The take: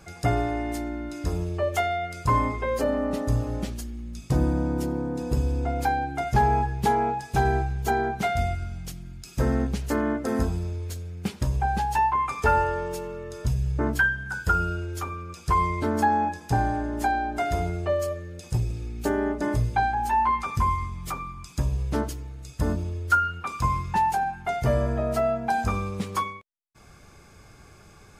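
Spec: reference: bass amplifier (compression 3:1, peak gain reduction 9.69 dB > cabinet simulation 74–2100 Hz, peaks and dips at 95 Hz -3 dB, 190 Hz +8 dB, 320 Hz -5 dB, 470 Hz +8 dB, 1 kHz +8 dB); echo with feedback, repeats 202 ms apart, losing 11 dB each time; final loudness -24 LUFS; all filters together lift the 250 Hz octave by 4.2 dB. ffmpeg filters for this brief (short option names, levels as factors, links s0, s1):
-af "equalizer=f=250:t=o:g=3.5,aecho=1:1:202|404|606:0.282|0.0789|0.0221,acompressor=threshold=0.0398:ratio=3,highpass=f=74:w=0.5412,highpass=f=74:w=1.3066,equalizer=f=95:t=q:w=4:g=-3,equalizer=f=190:t=q:w=4:g=8,equalizer=f=320:t=q:w=4:g=-5,equalizer=f=470:t=q:w=4:g=8,equalizer=f=1000:t=q:w=4:g=8,lowpass=f=2100:w=0.5412,lowpass=f=2100:w=1.3066,volume=1.78"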